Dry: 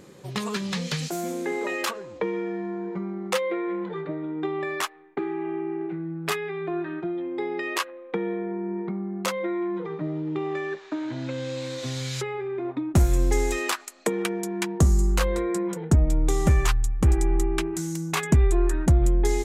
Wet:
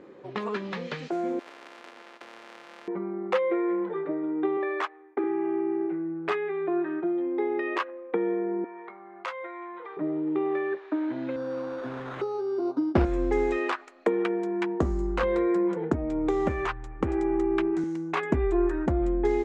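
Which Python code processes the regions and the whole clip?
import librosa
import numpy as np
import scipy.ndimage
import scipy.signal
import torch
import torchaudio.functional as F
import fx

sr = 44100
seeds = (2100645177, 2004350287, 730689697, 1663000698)

y = fx.chain(x, sr, fx.sample_sort(block=128),
    fx.highpass(hz=470.0, slope=24),
    fx.spectral_comp(ratio=10.0), at=(1.39, 2.88))
y = fx.chain(y, sr, fx.highpass(hz=260.0, slope=12),
    fx.notch(hz=2800.0, q=25.0), at=(4.57, 5.24))
y = fx.chain(y, sr, fx.highpass(hz=950.0, slope=12),
    fx.doubler(ms=19.0, db=-11),
    fx.band_squash(depth_pct=40), at=(8.64, 9.97))
y = fx.chain(y, sr, fx.brickwall_bandstop(low_hz=1600.0, high_hz=3300.0),
    fx.sample_hold(seeds[0], rate_hz=5100.0, jitter_pct=0),
    fx.band_widen(depth_pct=40), at=(11.36, 13.05))
y = fx.chain(y, sr, fx.highpass(hz=67.0, slope=12),
    fx.band_squash(depth_pct=70), at=(15.23, 17.84))
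y = scipy.signal.sosfilt(scipy.signal.butter(2, 2000.0, 'lowpass', fs=sr, output='sos'), y)
y = fx.low_shelf_res(y, sr, hz=210.0, db=-10.0, q=1.5)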